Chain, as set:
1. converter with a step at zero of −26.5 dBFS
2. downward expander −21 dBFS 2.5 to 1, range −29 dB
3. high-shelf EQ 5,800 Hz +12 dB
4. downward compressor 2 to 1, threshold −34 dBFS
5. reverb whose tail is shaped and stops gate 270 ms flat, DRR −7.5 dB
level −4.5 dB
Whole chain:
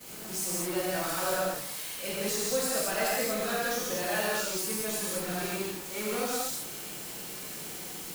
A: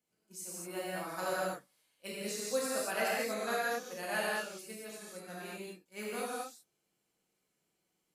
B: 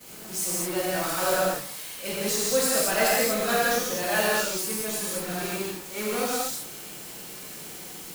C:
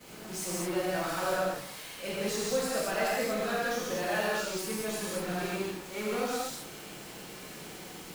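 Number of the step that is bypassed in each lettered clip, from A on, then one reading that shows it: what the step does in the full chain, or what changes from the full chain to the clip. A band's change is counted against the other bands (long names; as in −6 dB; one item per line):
1, distortion level −4 dB
4, change in momentary loudness spread +6 LU
3, 8 kHz band −6.5 dB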